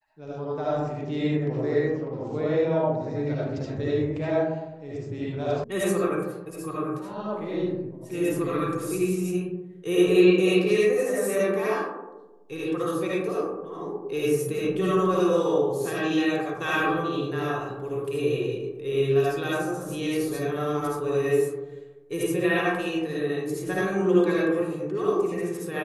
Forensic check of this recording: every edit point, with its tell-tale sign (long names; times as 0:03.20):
0:05.64: cut off before it has died away